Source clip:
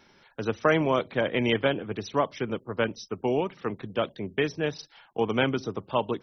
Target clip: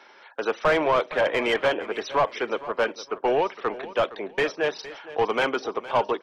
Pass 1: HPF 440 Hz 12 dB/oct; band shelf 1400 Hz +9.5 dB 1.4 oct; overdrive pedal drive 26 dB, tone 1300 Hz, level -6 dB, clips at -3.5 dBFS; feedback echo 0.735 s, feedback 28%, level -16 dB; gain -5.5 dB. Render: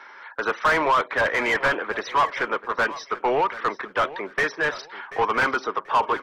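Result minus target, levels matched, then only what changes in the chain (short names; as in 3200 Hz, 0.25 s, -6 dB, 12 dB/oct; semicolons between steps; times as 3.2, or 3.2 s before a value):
echo 0.272 s late; 1000 Hz band +2.5 dB
change: feedback echo 0.463 s, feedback 28%, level -16 dB; remove: band shelf 1400 Hz +9.5 dB 1.4 oct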